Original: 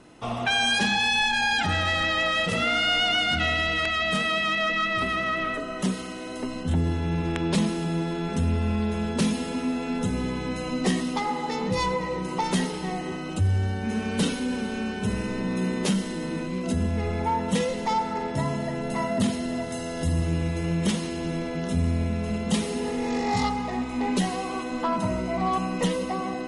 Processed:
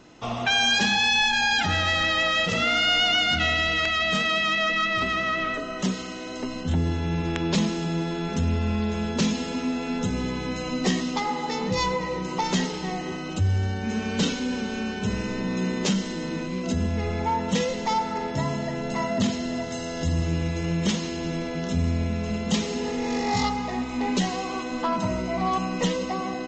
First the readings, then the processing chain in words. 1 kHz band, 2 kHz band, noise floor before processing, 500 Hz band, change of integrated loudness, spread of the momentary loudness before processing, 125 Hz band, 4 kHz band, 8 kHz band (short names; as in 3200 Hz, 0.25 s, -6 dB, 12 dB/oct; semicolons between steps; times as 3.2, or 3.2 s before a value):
+0.5 dB, +1.5 dB, -33 dBFS, 0.0 dB, +1.0 dB, 8 LU, 0.0 dB, +2.5 dB, +2.0 dB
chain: high shelf 3700 Hz +6 dB; downsampling 16000 Hz